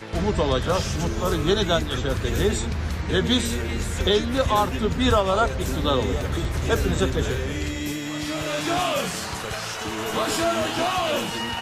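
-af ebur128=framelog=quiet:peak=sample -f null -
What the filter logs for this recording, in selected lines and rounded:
Integrated loudness:
  I:         -23.8 LUFS
  Threshold: -33.8 LUFS
Loudness range:
  LRA:         3.5 LU
  Threshold: -43.8 LUFS
  LRA low:   -25.8 LUFS
  LRA high:  -22.4 LUFS
Sample peak:
  Peak:       -8.6 dBFS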